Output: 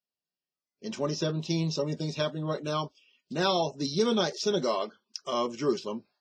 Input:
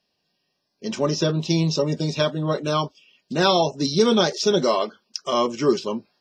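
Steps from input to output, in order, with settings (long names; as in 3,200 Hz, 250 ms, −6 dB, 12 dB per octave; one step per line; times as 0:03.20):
noise reduction from a noise print of the clip's start 16 dB
level −8 dB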